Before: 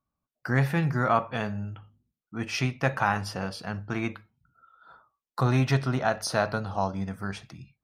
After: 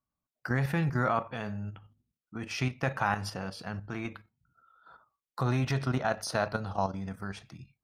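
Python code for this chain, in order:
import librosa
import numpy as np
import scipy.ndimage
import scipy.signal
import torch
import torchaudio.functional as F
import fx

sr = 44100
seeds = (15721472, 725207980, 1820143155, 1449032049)

y = fx.level_steps(x, sr, step_db=9)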